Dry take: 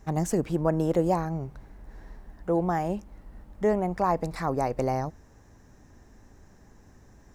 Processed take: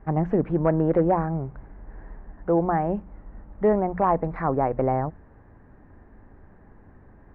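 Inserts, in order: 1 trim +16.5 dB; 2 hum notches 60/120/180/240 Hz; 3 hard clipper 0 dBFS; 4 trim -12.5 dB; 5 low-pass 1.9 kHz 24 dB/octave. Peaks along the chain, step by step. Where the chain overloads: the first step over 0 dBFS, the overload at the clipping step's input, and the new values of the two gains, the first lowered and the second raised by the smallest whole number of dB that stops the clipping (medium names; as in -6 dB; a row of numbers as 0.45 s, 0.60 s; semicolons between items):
+4.5 dBFS, +4.0 dBFS, 0.0 dBFS, -12.5 dBFS, -11.5 dBFS; step 1, 4.0 dB; step 1 +12.5 dB, step 4 -8.5 dB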